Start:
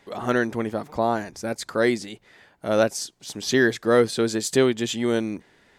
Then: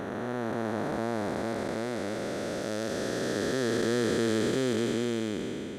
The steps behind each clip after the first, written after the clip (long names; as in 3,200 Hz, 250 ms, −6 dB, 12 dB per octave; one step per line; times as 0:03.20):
spectrum smeared in time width 1,380 ms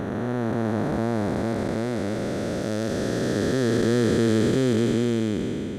low-shelf EQ 250 Hz +11.5 dB
level +2 dB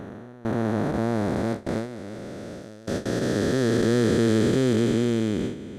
noise gate with hold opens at −15 dBFS
reversed playback
upward compression, threshold −24 dBFS
reversed playback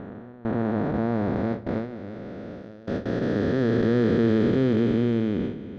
high-frequency loss of the air 290 metres
on a send at −15 dB: convolution reverb RT60 0.85 s, pre-delay 4 ms